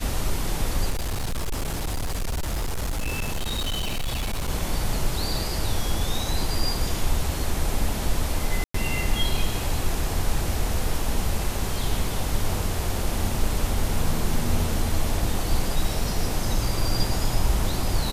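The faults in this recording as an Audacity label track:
0.900000	4.500000	clipped -23 dBFS
8.640000	8.740000	dropout 104 ms

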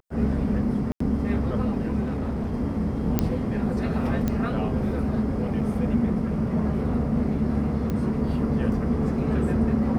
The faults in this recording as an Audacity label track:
0.920000	1.000000	dropout 84 ms
2.000000	2.540000	clipped -24 dBFS
3.190000	3.190000	pop -7 dBFS
4.280000	4.280000	pop -13 dBFS
5.610000	5.610000	dropout 4.9 ms
7.900000	7.900000	pop -17 dBFS

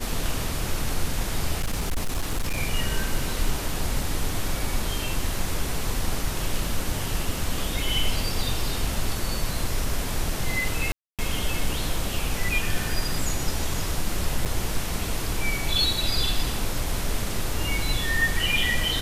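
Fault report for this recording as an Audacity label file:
1.600000	2.580000	clipped -21 dBFS
10.920000	11.190000	dropout 267 ms
14.450000	14.460000	dropout 7.1 ms

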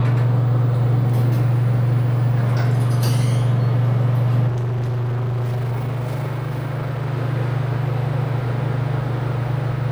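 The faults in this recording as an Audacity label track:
4.470000	7.110000	clipped -19.5 dBFS

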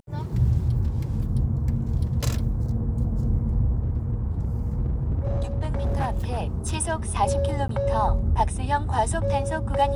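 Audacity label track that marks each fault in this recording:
3.830000	6.750000	clipped -20.5 dBFS
7.680000	7.690000	dropout

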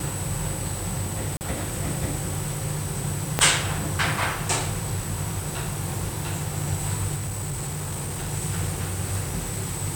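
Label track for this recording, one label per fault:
1.370000	1.410000	dropout 39 ms
3.390000	3.390000	pop -4 dBFS
7.150000	8.340000	clipped -26.5 dBFS

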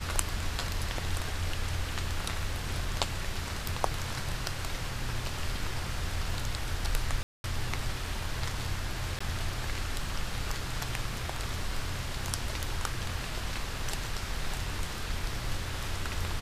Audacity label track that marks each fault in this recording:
7.230000	7.440000	dropout 211 ms
9.190000	9.210000	dropout 15 ms

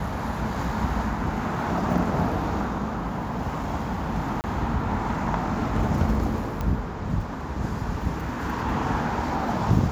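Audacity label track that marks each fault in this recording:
4.410000	4.440000	dropout 29 ms
6.610000	6.610000	pop -16 dBFS

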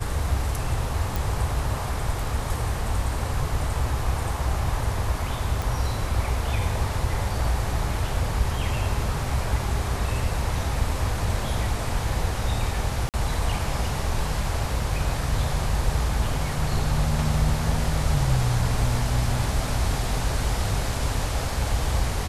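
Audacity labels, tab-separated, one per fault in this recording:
1.160000	1.160000	pop
5.620000	5.620000	pop
13.090000	13.140000	dropout 48 ms

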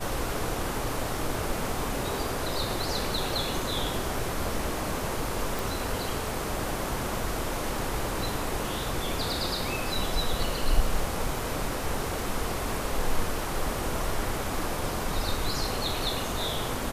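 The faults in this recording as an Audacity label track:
5.590000	5.590000	pop

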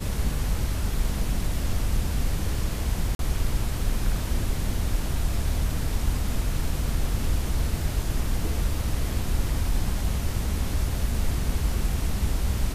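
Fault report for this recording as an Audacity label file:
3.150000	3.190000	dropout 42 ms

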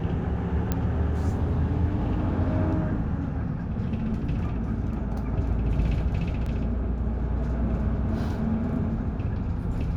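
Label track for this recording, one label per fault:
0.720000	0.720000	pop -12 dBFS
6.460000	6.460000	dropout 3.6 ms

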